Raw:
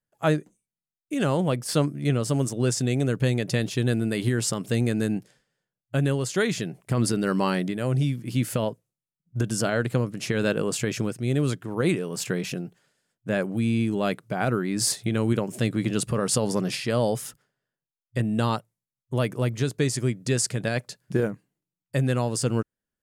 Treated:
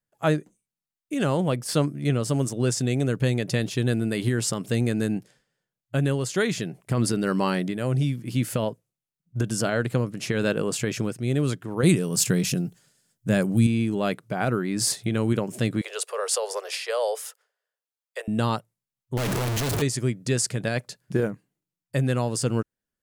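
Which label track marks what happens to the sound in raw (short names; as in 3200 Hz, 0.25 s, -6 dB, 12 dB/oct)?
11.830000	13.670000	tone controls bass +9 dB, treble +11 dB
15.810000	18.280000	steep high-pass 430 Hz 72 dB/oct
19.170000	19.820000	infinite clipping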